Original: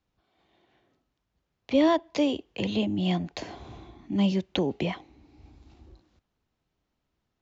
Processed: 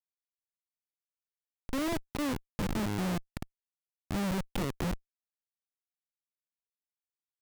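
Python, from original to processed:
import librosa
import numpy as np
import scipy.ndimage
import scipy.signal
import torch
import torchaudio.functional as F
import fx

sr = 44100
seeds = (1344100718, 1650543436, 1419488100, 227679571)

y = fx.schmitt(x, sr, flips_db=-26.0)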